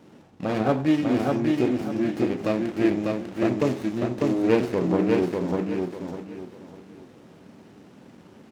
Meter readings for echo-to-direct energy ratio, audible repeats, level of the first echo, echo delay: -2.5 dB, 3, -3.0 dB, 597 ms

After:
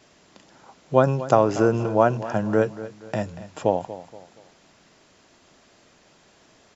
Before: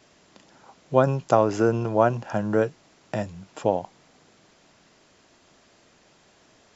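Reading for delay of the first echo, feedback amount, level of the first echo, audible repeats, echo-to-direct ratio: 237 ms, 38%, -15.0 dB, 3, -14.5 dB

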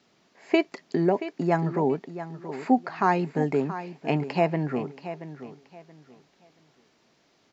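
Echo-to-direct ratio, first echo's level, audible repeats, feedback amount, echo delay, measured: -12.0 dB, -12.5 dB, 2, 25%, 678 ms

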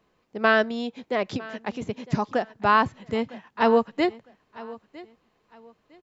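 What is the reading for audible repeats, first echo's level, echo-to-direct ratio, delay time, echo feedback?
2, -19.5 dB, -19.0 dB, 956 ms, 27%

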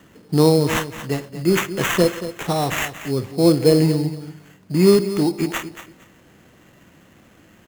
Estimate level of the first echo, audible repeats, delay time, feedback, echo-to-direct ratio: -12.5 dB, 2, 231 ms, 20%, -12.5 dB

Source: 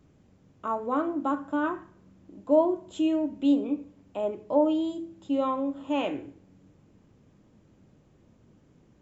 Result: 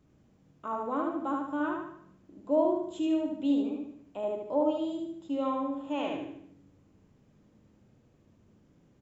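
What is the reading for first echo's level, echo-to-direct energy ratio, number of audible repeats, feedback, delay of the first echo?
-3.0 dB, -2.0 dB, 5, 45%, 75 ms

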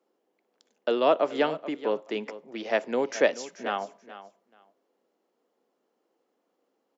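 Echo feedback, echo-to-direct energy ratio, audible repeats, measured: 17%, -15.0 dB, 2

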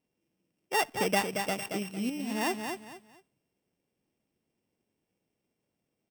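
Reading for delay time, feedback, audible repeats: 227 ms, 27%, 3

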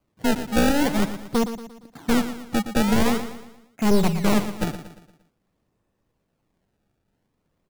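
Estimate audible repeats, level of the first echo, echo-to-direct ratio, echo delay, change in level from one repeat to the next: 4, -11.0 dB, -10.0 dB, 116 ms, -7.0 dB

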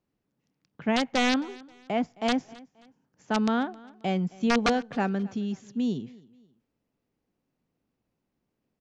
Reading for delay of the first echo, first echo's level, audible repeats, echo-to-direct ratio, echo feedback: 266 ms, -22.5 dB, 2, -22.0 dB, 35%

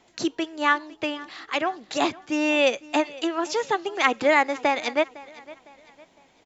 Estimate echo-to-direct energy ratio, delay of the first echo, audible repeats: -20.0 dB, 507 ms, 2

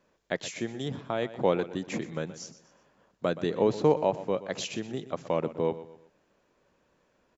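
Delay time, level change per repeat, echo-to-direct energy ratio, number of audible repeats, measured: 123 ms, -8.5 dB, -14.5 dB, 3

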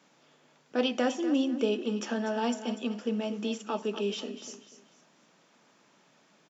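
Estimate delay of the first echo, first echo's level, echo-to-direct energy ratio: 244 ms, -12.0 dB, -11.5 dB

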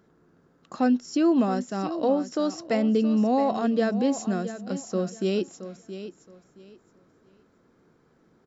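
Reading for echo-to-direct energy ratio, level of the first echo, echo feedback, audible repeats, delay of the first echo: -12.0 dB, -12.0 dB, 23%, 2, 671 ms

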